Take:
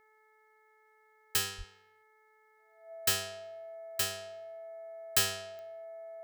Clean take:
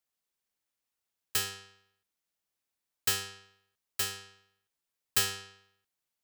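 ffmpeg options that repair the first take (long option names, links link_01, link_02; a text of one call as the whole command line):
ffmpeg -i in.wav -filter_complex "[0:a]adeclick=threshold=4,bandreject=frequency=433.1:width_type=h:width=4,bandreject=frequency=866.2:width_type=h:width=4,bandreject=frequency=1299.3:width_type=h:width=4,bandreject=frequency=1732.4:width_type=h:width=4,bandreject=frequency=2165.5:width_type=h:width=4,bandreject=frequency=660:width=30,asplit=3[link_01][link_02][link_03];[link_01]afade=type=out:start_time=1.57:duration=0.02[link_04];[link_02]highpass=frequency=140:width=0.5412,highpass=frequency=140:width=1.3066,afade=type=in:start_time=1.57:duration=0.02,afade=type=out:start_time=1.69:duration=0.02[link_05];[link_03]afade=type=in:start_time=1.69:duration=0.02[link_06];[link_04][link_05][link_06]amix=inputs=3:normalize=0" out.wav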